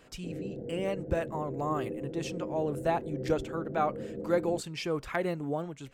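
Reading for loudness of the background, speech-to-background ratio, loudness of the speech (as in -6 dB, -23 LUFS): -40.0 LUFS, 6.5 dB, -33.5 LUFS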